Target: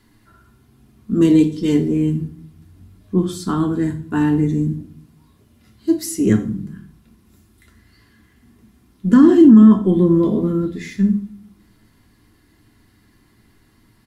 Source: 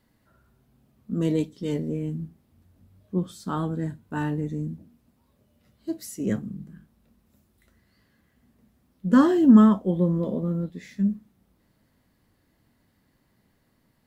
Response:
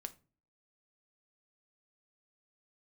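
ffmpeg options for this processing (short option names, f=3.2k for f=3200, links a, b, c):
-filter_complex "[0:a]acrossover=split=500[a][b];[b]acompressor=threshold=-34dB:ratio=6[c];[a][c]amix=inputs=2:normalize=0,equalizer=f=610:t=o:w=0.54:g=-11,aecho=1:1:2.9:0.37[d];[1:a]atrim=start_sample=2205,asetrate=23814,aresample=44100[e];[d][e]afir=irnorm=-1:irlink=0,alimiter=level_in=13dB:limit=-1dB:release=50:level=0:latency=1,volume=-1dB"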